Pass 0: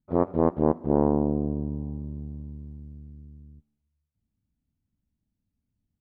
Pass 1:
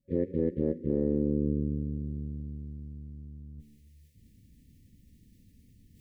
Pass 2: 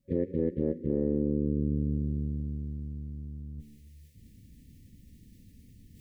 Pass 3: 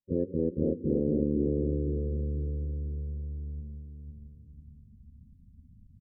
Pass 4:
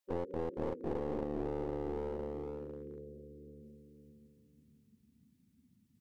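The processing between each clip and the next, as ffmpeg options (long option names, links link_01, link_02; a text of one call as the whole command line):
ffmpeg -i in.wav -af "afftfilt=real='re*(1-between(b*sr/4096,550,1700))':imag='im*(1-between(b*sr/4096,550,1700))':win_size=4096:overlap=0.75,alimiter=limit=-17.5dB:level=0:latency=1:release=10,areverse,acompressor=mode=upward:threshold=-39dB:ratio=2.5,areverse" out.wav
ffmpeg -i in.wav -af "alimiter=limit=-22.5dB:level=0:latency=1:release=412,volume=4.5dB" out.wav
ffmpeg -i in.wav -filter_complex "[0:a]afftdn=noise_reduction=29:noise_floor=-42,asplit=2[link_01][link_02];[link_02]adelay=502,lowpass=frequency=820:poles=1,volume=-3.5dB,asplit=2[link_03][link_04];[link_04]adelay=502,lowpass=frequency=820:poles=1,volume=0.45,asplit=2[link_05][link_06];[link_06]adelay=502,lowpass=frequency=820:poles=1,volume=0.45,asplit=2[link_07][link_08];[link_08]adelay=502,lowpass=frequency=820:poles=1,volume=0.45,asplit=2[link_09][link_10];[link_10]adelay=502,lowpass=frequency=820:poles=1,volume=0.45,asplit=2[link_11][link_12];[link_12]adelay=502,lowpass=frequency=820:poles=1,volume=0.45[link_13];[link_03][link_05][link_07][link_09][link_11][link_13]amix=inputs=6:normalize=0[link_14];[link_01][link_14]amix=inputs=2:normalize=0" out.wav
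ffmpeg -i in.wav -af "highpass=480,acompressor=threshold=-40dB:ratio=5,aeval=exprs='clip(val(0),-1,0.00335)':channel_layout=same,volume=8.5dB" out.wav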